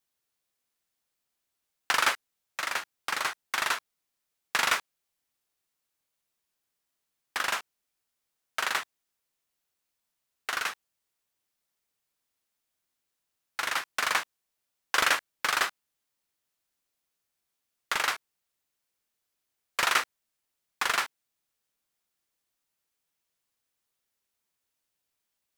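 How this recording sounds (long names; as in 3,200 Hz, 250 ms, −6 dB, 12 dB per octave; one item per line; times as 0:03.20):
background noise floor −83 dBFS
spectral slope −0.5 dB per octave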